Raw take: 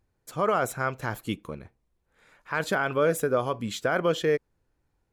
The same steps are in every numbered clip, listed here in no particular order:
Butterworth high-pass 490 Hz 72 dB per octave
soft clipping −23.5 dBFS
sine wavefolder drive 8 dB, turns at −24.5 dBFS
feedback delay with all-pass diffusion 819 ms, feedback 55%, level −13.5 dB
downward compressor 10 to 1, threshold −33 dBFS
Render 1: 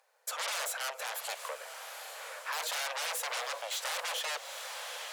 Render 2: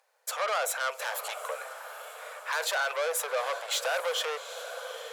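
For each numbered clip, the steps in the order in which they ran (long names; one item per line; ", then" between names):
sine wavefolder, then feedback delay with all-pass diffusion, then soft clipping, then downward compressor, then Butterworth high-pass
soft clipping, then downward compressor, then feedback delay with all-pass diffusion, then sine wavefolder, then Butterworth high-pass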